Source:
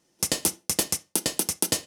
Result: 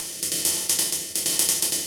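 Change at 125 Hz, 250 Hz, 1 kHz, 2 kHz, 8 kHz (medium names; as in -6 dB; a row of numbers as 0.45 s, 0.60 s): -5.0 dB, -4.5 dB, -3.0 dB, +1.5 dB, +4.5 dB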